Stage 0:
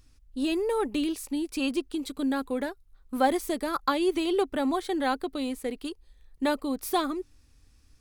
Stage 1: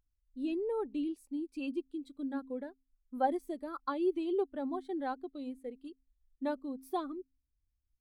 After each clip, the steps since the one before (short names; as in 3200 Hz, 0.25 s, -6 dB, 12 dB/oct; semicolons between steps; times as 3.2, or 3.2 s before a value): de-hum 88.36 Hz, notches 3; spectral expander 1.5:1; gain -7.5 dB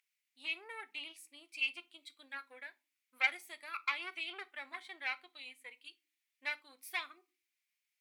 tube stage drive 29 dB, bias 0.45; resonant high-pass 2200 Hz, resonance Q 4.3; reverb, pre-delay 8 ms, DRR 12 dB; gain +8 dB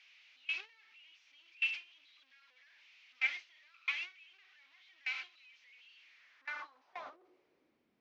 delta modulation 32 kbps, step -33 dBFS; gate with hold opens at -26 dBFS; band-pass sweep 2600 Hz -> 240 Hz, 5.99–7.89; gain +2 dB